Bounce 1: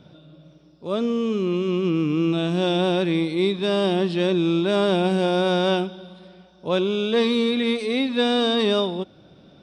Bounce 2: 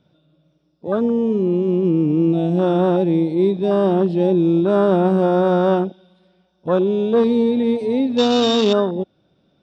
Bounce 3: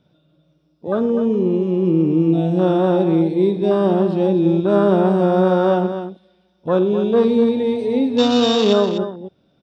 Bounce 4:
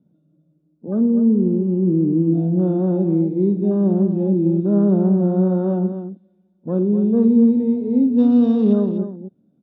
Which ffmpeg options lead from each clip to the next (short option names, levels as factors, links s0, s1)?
-af "afwtdn=0.0501,volume=1.78"
-af "aecho=1:1:49|115|249:0.224|0.112|0.335"
-af "bandpass=f=220:t=q:w=2.5:csg=0,volume=1.78"